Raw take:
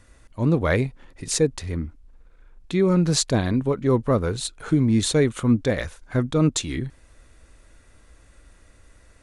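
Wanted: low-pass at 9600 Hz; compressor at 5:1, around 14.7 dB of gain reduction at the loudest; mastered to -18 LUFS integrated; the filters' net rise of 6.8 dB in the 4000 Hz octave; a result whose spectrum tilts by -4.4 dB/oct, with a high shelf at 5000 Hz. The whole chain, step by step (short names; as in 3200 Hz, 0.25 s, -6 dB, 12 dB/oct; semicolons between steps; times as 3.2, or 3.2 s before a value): LPF 9600 Hz; bell 4000 Hz +5.5 dB; high shelf 5000 Hz +5 dB; compressor 5:1, threshold -31 dBFS; gain +16 dB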